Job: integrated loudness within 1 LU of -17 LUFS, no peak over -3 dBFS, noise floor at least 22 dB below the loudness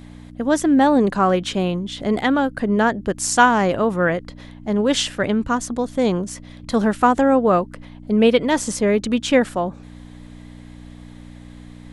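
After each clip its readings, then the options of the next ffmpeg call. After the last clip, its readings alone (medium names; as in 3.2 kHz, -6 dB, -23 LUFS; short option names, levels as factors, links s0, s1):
hum 60 Hz; highest harmonic 300 Hz; hum level -38 dBFS; loudness -19.0 LUFS; peak level -1.5 dBFS; loudness target -17.0 LUFS
-> -af "bandreject=f=60:t=h:w=4,bandreject=f=120:t=h:w=4,bandreject=f=180:t=h:w=4,bandreject=f=240:t=h:w=4,bandreject=f=300:t=h:w=4"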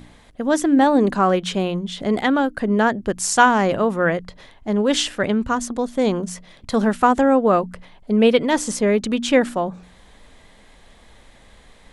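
hum not found; loudness -19.0 LUFS; peak level -2.0 dBFS; loudness target -17.0 LUFS
-> -af "volume=1.26,alimiter=limit=0.708:level=0:latency=1"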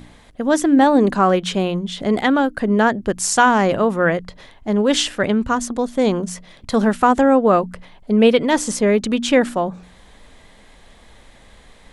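loudness -17.5 LUFS; peak level -3.0 dBFS; noise floor -48 dBFS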